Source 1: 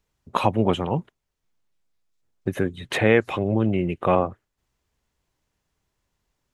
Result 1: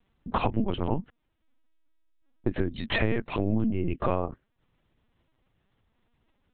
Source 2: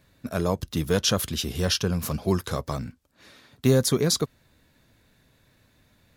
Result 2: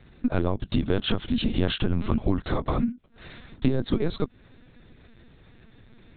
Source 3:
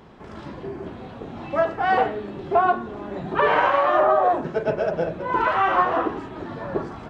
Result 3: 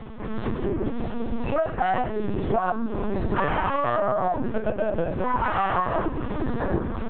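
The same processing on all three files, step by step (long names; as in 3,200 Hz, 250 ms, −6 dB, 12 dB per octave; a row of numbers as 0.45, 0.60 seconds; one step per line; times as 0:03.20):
parametric band 230 Hz +11.5 dB 0.48 octaves
downward compressor 8 to 1, threshold −27 dBFS
linear-prediction vocoder at 8 kHz pitch kept
normalise the peak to −9 dBFS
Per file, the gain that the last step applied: +4.0, +7.5, +6.5 decibels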